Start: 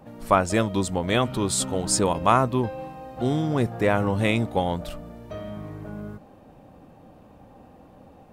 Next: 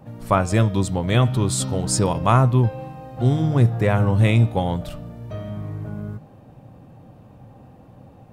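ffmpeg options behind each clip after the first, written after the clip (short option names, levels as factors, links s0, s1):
-af "equalizer=f=120:w=1.7:g=13,bandreject=f=152:t=h:w=4,bandreject=f=304:t=h:w=4,bandreject=f=456:t=h:w=4,bandreject=f=608:t=h:w=4,bandreject=f=760:t=h:w=4,bandreject=f=912:t=h:w=4,bandreject=f=1064:t=h:w=4,bandreject=f=1216:t=h:w=4,bandreject=f=1368:t=h:w=4,bandreject=f=1520:t=h:w=4,bandreject=f=1672:t=h:w=4,bandreject=f=1824:t=h:w=4,bandreject=f=1976:t=h:w=4,bandreject=f=2128:t=h:w=4,bandreject=f=2280:t=h:w=4,bandreject=f=2432:t=h:w=4,bandreject=f=2584:t=h:w=4,bandreject=f=2736:t=h:w=4,bandreject=f=2888:t=h:w=4,bandreject=f=3040:t=h:w=4,bandreject=f=3192:t=h:w=4,bandreject=f=3344:t=h:w=4,bandreject=f=3496:t=h:w=4,bandreject=f=3648:t=h:w=4,bandreject=f=3800:t=h:w=4,bandreject=f=3952:t=h:w=4,bandreject=f=4104:t=h:w=4,bandreject=f=4256:t=h:w=4,bandreject=f=4408:t=h:w=4,bandreject=f=4560:t=h:w=4,bandreject=f=4712:t=h:w=4,bandreject=f=4864:t=h:w=4,bandreject=f=5016:t=h:w=4,bandreject=f=5168:t=h:w=4,bandreject=f=5320:t=h:w=4,bandreject=f=5472:t=h:w=4,bandreject=f=5624:t=h:w=4,bandreject=f=5776:t=h:w=4,bandreject=f=5928:t=h:w=4"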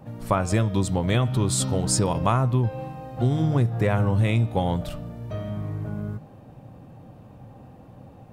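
-af "acompressor=threshold=0.141:ratio=6"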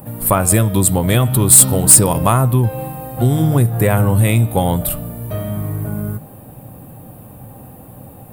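-filter_complex "[0:a]aexciter=amount=13.5:drive=7.3:freq=8800,asplit=2[s0][s1];[s1]aeval=exprs='1.58*sin(PI/2*3.55*val(0)/1.58)':c=same,volume=0.501[s2];[s0][s2]amix=inputs=2:normalize=0,volume=0.668"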